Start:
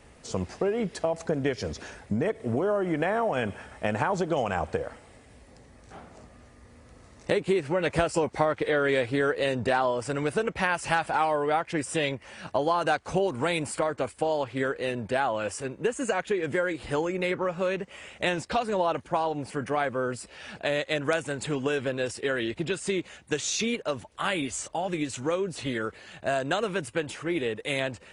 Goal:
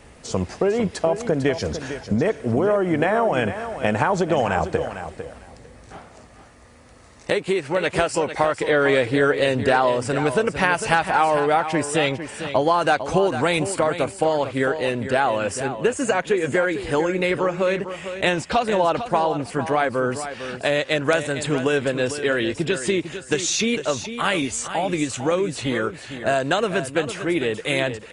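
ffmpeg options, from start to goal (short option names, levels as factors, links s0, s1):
-filter_complex "[0:a]asettb=1/sr,asplit=3[s0][s1][s2];[s0]atrim=end=5.974[s3];[s1]atrim=start=5.97:end=8.64,asetpts=PTS-STARTPTS,afade=t=in:d=0.004:c=qsin,afade=t=out:st=2.666:d=0.004:c=qsin,lowshelf=f=470:g=-6.5[s4];[s2]atrim=start=8.636[s5];[s3][s4]acrossfade=d=0.004:c1=hsin:c2=qsin[s6];[s6][s5]acrossfade=d=0.004:c1=qsin:c2=hsin,aecho=1:1:451|902:0.299|0.0508,volume=2.11"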